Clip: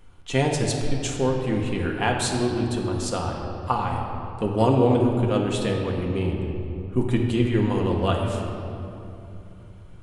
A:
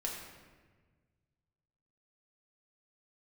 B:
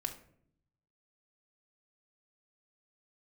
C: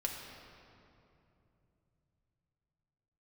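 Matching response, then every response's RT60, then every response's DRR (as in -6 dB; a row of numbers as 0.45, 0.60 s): C; 1.4, 0.65, 2.9 s; -3.0, 3.0, -0.5 dB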